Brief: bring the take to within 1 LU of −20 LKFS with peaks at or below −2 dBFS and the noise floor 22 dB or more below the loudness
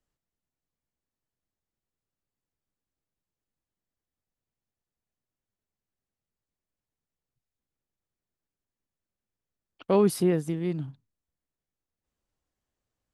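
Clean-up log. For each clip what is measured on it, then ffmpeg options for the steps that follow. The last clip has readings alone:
integrated loudness −26.0 LKFS; sample peak −11.5 dBFS; target loudness −20.0 LKFS
→ -af "volume=6dB"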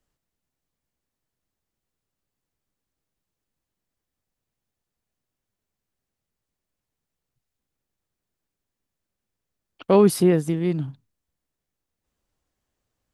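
integrated loudness −20.0 LKFS; sample peak −5.5 dBFS; background noise floor −85 dBFS

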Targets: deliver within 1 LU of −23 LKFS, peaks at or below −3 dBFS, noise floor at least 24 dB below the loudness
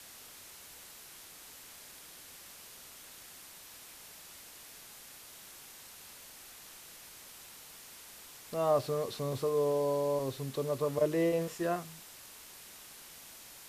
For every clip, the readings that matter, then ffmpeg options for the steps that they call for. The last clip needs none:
background noise floor −52 dBFS; target noise floor −57 dBFS; integrated loudness −32.5 LKFS; sample peak −17.0 dBFS; target loudness −23.0 LKFS
→ -af "afftdn=noise_reduction=6:noise_floor=-52"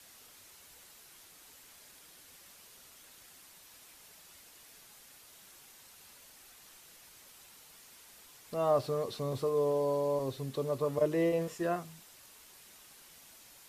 background noise floor −57 dBFS; integrated loudness −32.5 LKFS; sample peak −17.5 dBFS; target loudness −23.0 LKFS
→ -af "volume=9.5dB"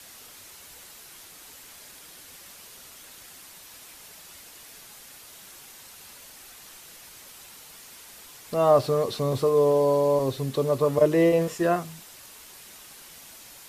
integrated loudness −23.0 LKFS; sample peak −8.0 dBFS; background noise floor −48 dBFS

